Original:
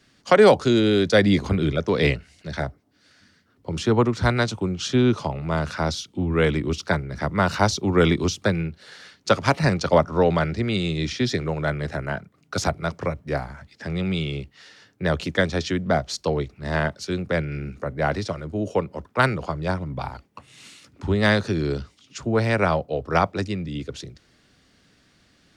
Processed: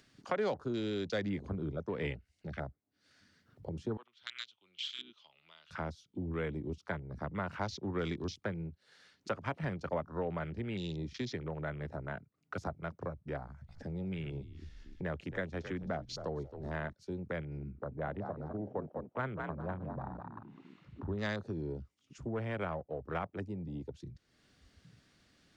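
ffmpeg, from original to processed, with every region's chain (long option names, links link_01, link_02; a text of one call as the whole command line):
ffmpeg -i in.wav -filter_complex "[0:a]asettb=1/sr,asplit=3[link_01][link_02][link_03];[link_01]atrim=end=3.974[link_04];[link_02]atrim=start=3.97:end=5.71,asetpts=PTS-STARTPTS,afade=type=in:duration=0.004:curve=qsin,afade=type=out:start_time=1.736:duration=0.004:curve=qsin,lowpass=frequency=3200:width_type=q:width=5.4,aderivative[link_05];[link_03]atrim=start=5.706[link_06];[link_04][link_05]acrossfade=duration=0.004:curve1=hsin:curve2=qsin[link_07];[link_07][link_06]acrossfade=duration=0.004:curve1=qsin:curve2=hsin,asettb=1/sr,asplit=3[link_08][link_09][link_10];[link_08]atrim=end=13.424[link_11];[link_09]atrim=start=13.42:end=16.93,asetpts=PTS-STARTPTS,afade=type=in:duration=0.004:curve=qsin,afade=type=out:start_time=3.506:duration=0.004:curve=qsin,equalizer=frequency=6400:width_type=o:width=0.28:gain=3,asplit=4[link_12][link_13][link_14][link_15];[link_13]adelay=267,afreqshift=-57,volume=-14dB[link_16];[link_14]adelay=534,afreqshift=-114,volume=-23.1dB[link_17];[link_15]adelay=801,afreqshift=-171,volume=-32.2dB[link_18];[link_12][link_16][link_17][link_18]amix=inputs=4:normalize=0,atrim=end_sample=154791[link_19];[link_10]atrim=start=16.926[link_20];[link_11][link_19]acrossfade=duration=0.004:curve1=hsin:curve2=qsin[link_21];[link_21][link_20]acrossfade=duration=0.004:curve1=qsin:curve2=hsin,asettb=1/sr,asplit=3[link_22][link_23][link_24];[link_22]atrim=end=17.714[link_25];[link_23]atrim=start=17.71:end=21.12,asetpts=PTS-STARTPTS,afade=type=in:duration=0.004:curve=qsin,afade=type=out:start_time=3.406:duration=0.004:curve=qsin,lowpass=1800,asoftclip=type=hard:threshold=-10.5dB,asplit=5[link_26][link_27][link_28][link_29][link_30];[link_27]adelay=204,afreqshift=45,volume=-7dB[link_31];[link_28]adelay=408,afreqshift=90,volume=-16.4dB[link_32];[link_29]adelay=612,afreqshift=135,volume=-25.7dB[link_33];[link_30]adelay=816,afreqshift=180,volume=-35.1dB[link_34];[link_26][link_31][link_32][link_33][link_34]amix=inputs=5:normalize=0,atrim=end_sample=150381[link_35];[link_24]atrim=start=21.116[link_36];[link_25][link_35]acrossfade=duration=0.004:curve1=hsin:curve2=qsin[link_37];[link_37][link_36]acrossfade=duration=0.004:curve1=qsin:curve2=hsin,asettb=1/sr,asplit=3[link_38][link_39][link_40];[link_38]atrim=end=21.644[link_41];[link_39]atrim=start=21.64:end=23.61,asetpts=PTS-STARTPTS,afade=type=in:duration=0.004:curve=qsin,afade=type=out:start_time=1.966:duration=0.004:curve=qsin,equalizer=frequency=4100:width_type=o:width=0.7:gain=-5.5,aeval=exprs='clip(val(0),-1,0.178)':channel_layout=same[link_42];[link_40]atrim=start=23.606[link_43];[link_41][link_42]acrossfade=duration=0.004:curve1=hsin:curve2=qsin[link_44];[link_44][link_43]acrossfade=duration=0.004:curve1=qsin:curve2=hsin,acompressor=mode=upward:threshold=-33dB:ratio=2.5,afwtdn=0.0251,acompressor=threshold=-38dB:ratio=2,volume=-5dB" out.wav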